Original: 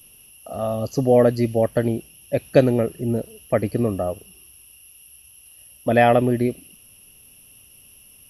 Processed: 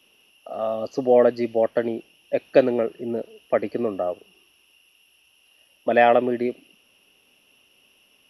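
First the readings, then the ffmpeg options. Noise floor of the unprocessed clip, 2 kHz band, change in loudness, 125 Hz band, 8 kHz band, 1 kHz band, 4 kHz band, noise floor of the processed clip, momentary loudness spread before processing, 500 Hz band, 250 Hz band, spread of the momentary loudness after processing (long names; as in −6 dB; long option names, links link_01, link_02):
−50 dBFS, 0.0 dB, −1.5 dB, −17.0 dB, below −15 dB, 0.0 dB, −2.0 dB, −61 dBFS, 12 LU, −0.5 dB, −5.0 dB, 13 LU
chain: -filter_complex "[0:a]acrossover=split=250 4800:gain=0.0794 1 0.0794[link_01][link_02][link_03];[link_01][link_02][link_03]amix=inputs=3:normalize=0"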